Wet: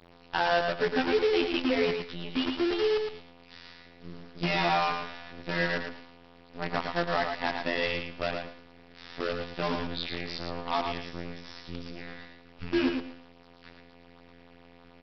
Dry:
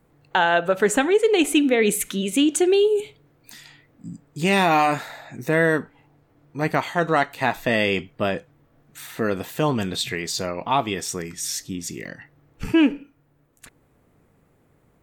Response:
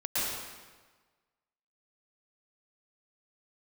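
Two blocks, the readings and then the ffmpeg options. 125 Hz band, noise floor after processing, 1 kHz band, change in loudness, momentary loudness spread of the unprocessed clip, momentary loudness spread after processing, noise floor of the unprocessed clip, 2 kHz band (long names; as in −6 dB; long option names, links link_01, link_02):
−9.5 dB, −55 dBFS, −7.5 dB, −8.0 dB, 17 LU, 20 LU, −62 dBFS, −7.5 dB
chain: -af "aeval=exprs='val(0)+0.5*0.0224*sgn(val(0))':channel_layout=same,agate=range=-33dB:threshold=-35dB:ratio=3:detection=peak,afftfilt=real='hypot(re,im)*cos(PI*b)':imag='0':win_size=2048:overlap=0.75,aresample=11025,acrusher=bits=5:dc=4:mix=0:aa=0.000001,aresample=44100,aecho=1:1:112|224|336:0.531|0.101|0.0192,volume=-6.5dB"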